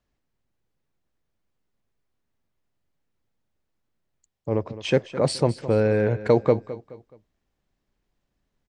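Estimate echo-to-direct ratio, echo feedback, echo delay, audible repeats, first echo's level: −14.5 dB, 36%, 212 ms, 3, −15.0 dB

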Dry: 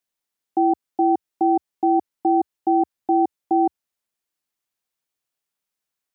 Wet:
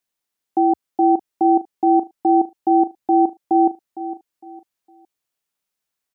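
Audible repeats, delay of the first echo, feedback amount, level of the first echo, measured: 3, 458 ms, 31%, −14.0 dB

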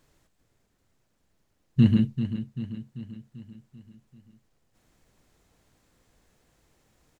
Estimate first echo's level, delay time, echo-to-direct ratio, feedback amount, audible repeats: −10.5 dB, 390 ms, −9.0 dB, 55%, 5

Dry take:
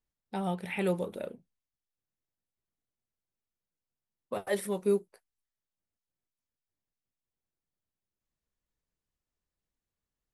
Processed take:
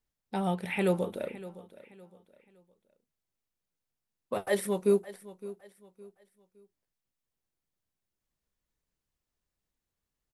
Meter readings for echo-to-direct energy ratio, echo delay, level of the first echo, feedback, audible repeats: −16.5 dB, 563 ms, −17.0 dB, 33%, 2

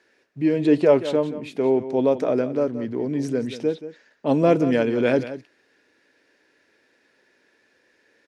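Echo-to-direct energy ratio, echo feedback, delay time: −13.0 dB, repeats not evenly spaced, 179 ms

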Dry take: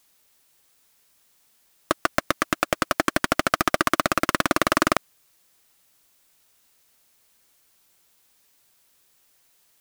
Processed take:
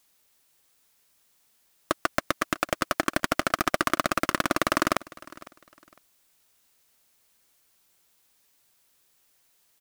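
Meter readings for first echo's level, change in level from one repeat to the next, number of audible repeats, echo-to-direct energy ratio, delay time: −21.0 dB, −11.5 dB, 2, −20.5 dB, 505 ms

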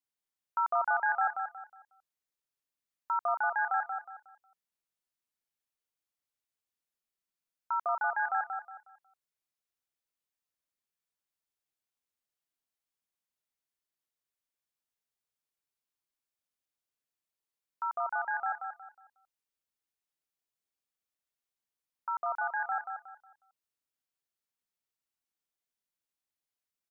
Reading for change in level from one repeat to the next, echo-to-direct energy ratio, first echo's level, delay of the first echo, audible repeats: −10.5 dB, −5.5 dB, −6.0 dB, 182 ms, 3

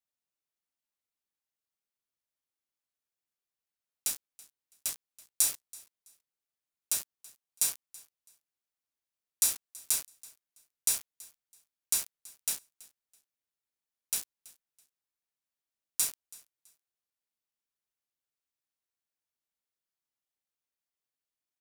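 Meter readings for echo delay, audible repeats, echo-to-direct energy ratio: 329 ms, 2, −22.0 dB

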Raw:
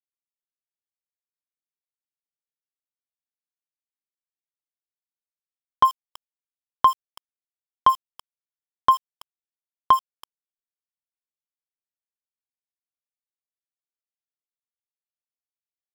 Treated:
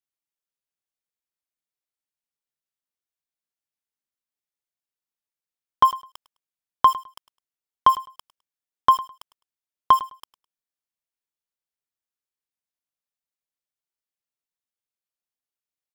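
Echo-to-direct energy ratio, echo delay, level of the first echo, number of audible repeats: −18.0 dB, 104 ms, −18.0 dB, 2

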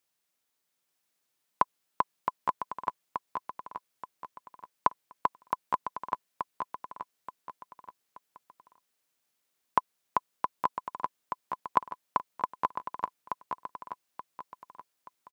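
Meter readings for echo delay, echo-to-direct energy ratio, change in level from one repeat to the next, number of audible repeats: 878 ms, −4.0 dB, −8.5 dB, 3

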